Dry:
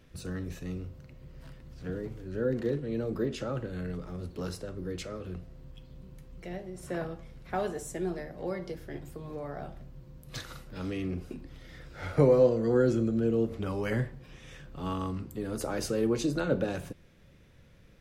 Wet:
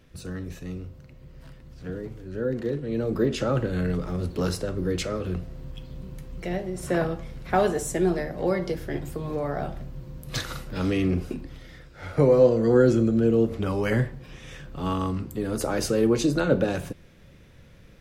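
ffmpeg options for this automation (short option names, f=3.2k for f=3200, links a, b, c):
-af "volume=19dB,afade=t=in:st=2.72:d=0.88:silence=0.398107,afade=t=out:st=11.18:d=0.74:silence=0.237137,afade=t=in:st=11.92:d=0.7:silence=0.354813"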